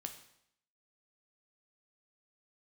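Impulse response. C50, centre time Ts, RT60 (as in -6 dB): 9.5 dB, 14 ms, 0.70 s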